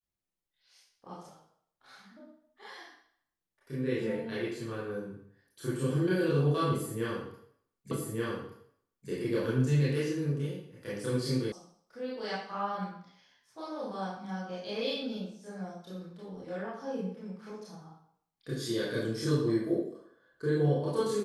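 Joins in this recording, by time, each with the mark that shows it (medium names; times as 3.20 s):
7.91 s: repeat of the last 1.18 s
11.52 s: sound stops dead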